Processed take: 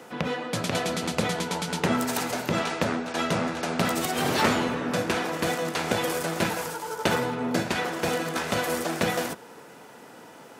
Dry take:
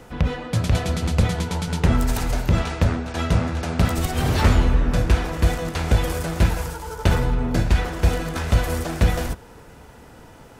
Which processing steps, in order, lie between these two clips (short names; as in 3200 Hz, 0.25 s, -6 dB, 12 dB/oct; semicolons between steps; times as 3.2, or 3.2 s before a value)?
Bessel high-pass 250 Hz, order 4; gain +1 dB